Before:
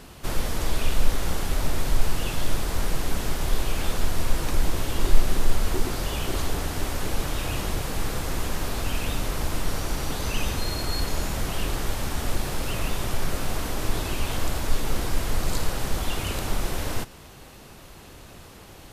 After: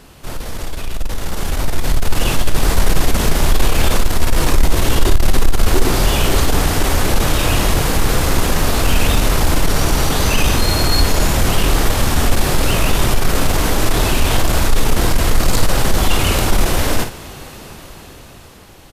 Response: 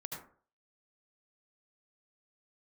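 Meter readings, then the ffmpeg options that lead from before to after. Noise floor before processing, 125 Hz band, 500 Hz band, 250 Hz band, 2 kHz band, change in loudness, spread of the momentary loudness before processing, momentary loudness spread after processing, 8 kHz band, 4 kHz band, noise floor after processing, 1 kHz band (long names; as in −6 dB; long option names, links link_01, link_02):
−46 dBFS, +12.0 dB, +12.0 dB, +12.0 dB, +12.0 dB, +12.0 dB, 4 LU, 11 LU, +12.0 dB, +12.0 dB, −38 dBFS, +12.0 dB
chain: -af "asoftclip=type=tanh:threshold=-18dB,dynaudnorm=framelen=310:gausssize=11:maxgain=12dB,aecho=1:1:26|52:0.15|0.355,volume=2dB"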